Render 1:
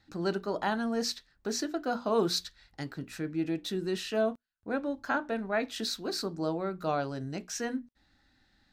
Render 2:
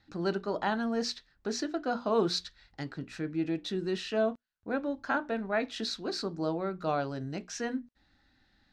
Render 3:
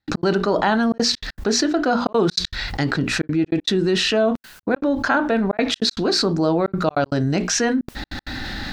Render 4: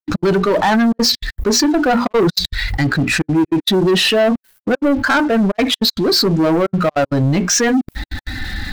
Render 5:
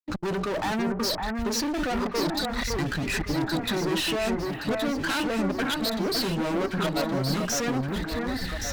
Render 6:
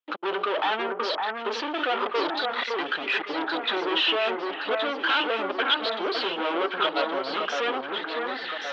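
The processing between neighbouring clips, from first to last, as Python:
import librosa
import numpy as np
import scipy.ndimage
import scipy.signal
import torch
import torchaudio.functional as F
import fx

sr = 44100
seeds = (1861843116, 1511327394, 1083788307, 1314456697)

y1 = scipy.signal.sosfilt(scipy.signal.butter(2, 5700.0, 'lowpass', fs=sr, output='sos'), x)
y2 = fx.step_gate(y1, sr, bpm=196, pattern='.x.xxxxxxxxx.xx', floor_db=-60.0, edge_ms=4.5)
y2 = fx.env_flatten(y2, sr, amount_pct=70)
y2 = F.gain(torch.from_numpy(y2), 7.5).numpy()
y3 = fx.bin_expand(y2, sr, power=1.5)
y3 = fx.leveller(y3, sr, passes=3)
y4 = fx.clip_asym(y3, sr, top_db=-22.5, bottom_db=-14.0)
y4 = fx.echo_alternate(y4, sr, ms=560, hz=2000.0, feedback_pct=73, wet_db=-3.0)
y4 = F.gain(torch.from_numpy(y4), -9.0).numpy()
y5 = fx.cabinet(y4, sr, low_hz=400.0, low_slope=24, high_hz=3400.0, hz=(620.0, 1300.0, 1900.0, 3200.0), db=(-3, 4, -3, 9))
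y5 = F.gain(torch.from_numpy(y5), 4.0).numpy()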